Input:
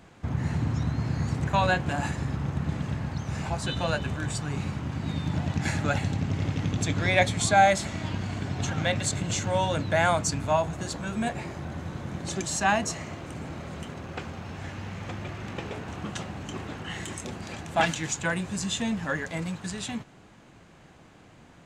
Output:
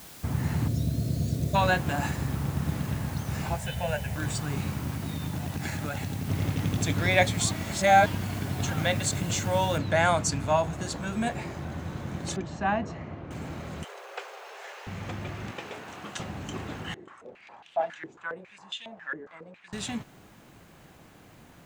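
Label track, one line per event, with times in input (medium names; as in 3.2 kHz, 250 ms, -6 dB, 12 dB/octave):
0.680000	1.550000	spectral selection erased 730–3400 Hz
3.560000	4.160000	static phaser centre 1.2 kHz, stages 6
4.900000	6.290000	compression, threshold -28 dBFS
7.510000	8.060000	reverse
9.780000	9.780000	noise floor step -48 dB -66 dB
12.360000	13.310000	tape spacing loss at 10 kHz 36 dB
13.840000	14.870000	steep high-pass 400 Hz 72 dB/octave
15.510000	16.200000	high-pass 540 Hz 6 dB/octave
16.940000	19.730000	step-sequenced band-pass 7.3 Hz 370–3100 Hz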